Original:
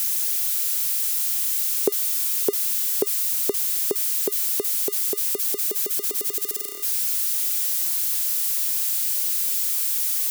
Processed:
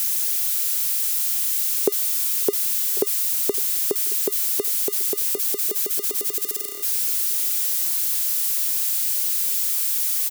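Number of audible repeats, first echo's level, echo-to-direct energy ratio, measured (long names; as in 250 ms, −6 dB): 2, −19.0 dB, −18.5 dB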